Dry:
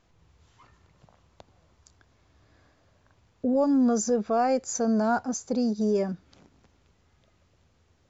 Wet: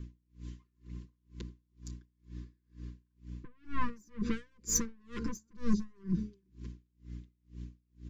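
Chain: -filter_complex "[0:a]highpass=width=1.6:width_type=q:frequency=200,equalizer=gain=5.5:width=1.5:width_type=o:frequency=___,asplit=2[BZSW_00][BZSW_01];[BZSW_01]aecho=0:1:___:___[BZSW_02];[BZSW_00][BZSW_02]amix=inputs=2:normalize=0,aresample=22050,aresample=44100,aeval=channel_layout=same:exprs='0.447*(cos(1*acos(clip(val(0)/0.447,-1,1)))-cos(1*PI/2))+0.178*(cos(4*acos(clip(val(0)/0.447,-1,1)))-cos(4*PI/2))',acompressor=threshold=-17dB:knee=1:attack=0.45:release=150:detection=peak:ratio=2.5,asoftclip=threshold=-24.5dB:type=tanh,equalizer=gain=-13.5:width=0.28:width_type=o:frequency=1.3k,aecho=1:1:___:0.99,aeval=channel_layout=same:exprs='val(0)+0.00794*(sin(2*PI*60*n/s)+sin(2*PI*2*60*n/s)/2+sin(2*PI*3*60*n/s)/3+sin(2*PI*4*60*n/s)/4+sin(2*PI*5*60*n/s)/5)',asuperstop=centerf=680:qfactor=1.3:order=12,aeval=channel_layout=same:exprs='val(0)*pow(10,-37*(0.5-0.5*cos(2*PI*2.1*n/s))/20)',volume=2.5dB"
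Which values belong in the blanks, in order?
320, 373, 0.0668, 5.8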